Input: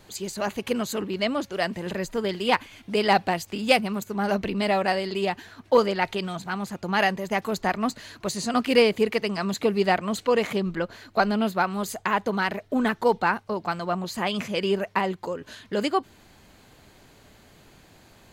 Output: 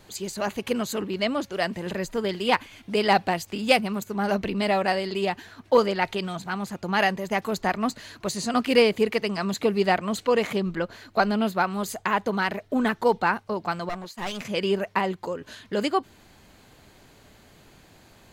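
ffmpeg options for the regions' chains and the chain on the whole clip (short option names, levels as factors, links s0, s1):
-filter_complex "[0:a]asettb=1/sr,asplit=3[s0][s1][s2];[s0]atrim=end=13.894[s3];[s1]atrim=start=13.89:end=14.45,asetpts=PTS-STARTPTS,afade=t=in:d=0.004:c=qsin,afade=t=out:st=0.556:d=0.004:c=qsin,agate=range=0.0224:threshold=0.0355:ratio=3:release=100:detection=peak,highpass=f=330:p=1,aeval=exprs='clip(val(0),-1,0.0168)':c=same[s4];[s2]atrim=start=14.446[s5];[s3][s4]acrossfade=d=0.004:c1=hsin:c2=qsin[s6];[s6][s5]acrossfade=d=0.004:c1=qsin:c2=hsin"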